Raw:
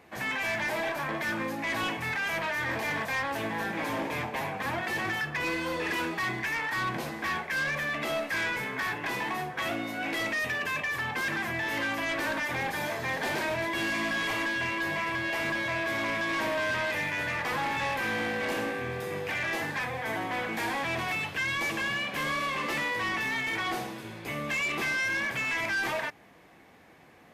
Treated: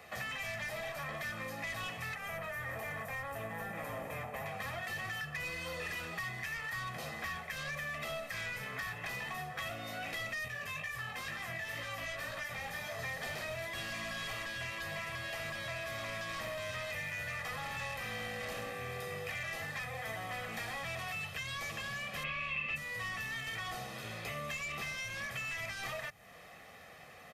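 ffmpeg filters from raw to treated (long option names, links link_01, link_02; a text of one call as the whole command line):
ffmpeg -i in.wav -filter_complex "[0:a]asettb=1/sr,asplit=3[link_01][link_02][link_03];[link_01]atrim=end=2.154[link_04];[link_02]atrim=start=2.15:end=4.46,asetpts=PTS-STARTPTS,afade=type=in:duration=0.004:curve=qsin,afade=type=out:start_time=2.306:duration=0.004:curve=qsin,equalizer=frequency=4400:width_type=o:width=1.7:gain=-13.5[link_05];[link_03]atrim=start=4.456[link_06];[link_04][link_05]acrossfade=duration=0.004:curve1=hsin:curve2=qsin[link_07];[link_07][link_06]acrossfade=duration=0.004:curve1=qsin:curve2=hsin,asettb=1/sr,asplit=3[link_08][link_09][link_10];[link_08]atrim=end=10.484[link_11];[link_09]atrim=start=10.48:end=12.99,asetpts=PTS-STARTPTS,afade=type=in:duration=0.004:curve=qsin,afade=type=out:start_time=2.506:duration=0.004:curve=qsin,flanger=delay=16:depth=4.2:speed=2.1[link_12];[link_10]atrim=start=12.986[link_13];[link_11][link_12]acrossfade=duration=0.004:curve1=hsin:curve2=qsin[link_14];[link_14][link_13]acrossfade=duration=0.004:curve1=qsin:curve2=hsin,asplit=3[link_15][link_16][link_17];[link_15]afade=type=out:start_time=22.23:duration=0.02[link_18];[link_16]lowpass=frequency=2600:width_type=q:width=9.2,afade=type=in:start_time=22.23:duration=0.02,afade=type=out:start_time=22.75:duration=0.02[link_19];[link_17]afade=type=in:start_time=22.75:duration=0.02[link_20];[link_18][link_19][link_20]amix=inputs=3:normalize=0,tiltshelf=frequency=970:gain=-3.5,aecho=1:1:1.6:0.66,acrossover=split=170|6900[link_21][link_22][link_23];[link_21]acompressor=threshold=-49dB:ratio=4[link_24];[link_22]acompressor=threshold=-42dB:ratio=4[link_25];[link_23]acompressor=threshold=-58dB:ratio=4[link_26];[link_24][link_25][link_26]amix=inputs=3:normalize=0,volume=1dB" out.wav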